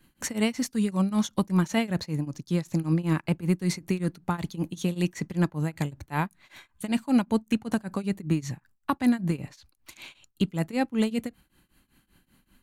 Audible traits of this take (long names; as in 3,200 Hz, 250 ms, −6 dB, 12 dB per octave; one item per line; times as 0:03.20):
tremolo triangle 5.2 Hz, depth 95%